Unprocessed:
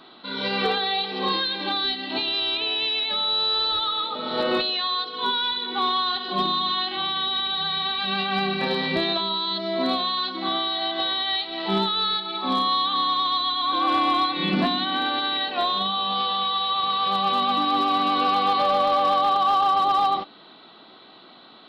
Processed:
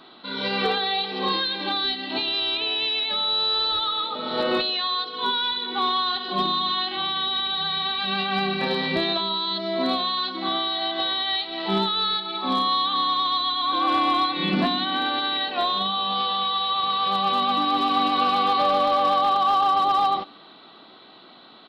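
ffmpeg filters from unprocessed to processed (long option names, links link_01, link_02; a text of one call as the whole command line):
ffmpeg -i in.wav -filter_complex "[0:a]asplit=2[link_01][link_02];[link_02]afade=type=in:start_time=17.28:duration=0.01,afade=type=out:start_time=17.92:duration=0.01,aecho=0:1:490|980|1470|1960|2450|2940:0.473151|0.236576|0.118288|0.0591439|0.029572|0.014786[link_03];[link_01][link_03]amix=inputs=2:normalize=0" out.wav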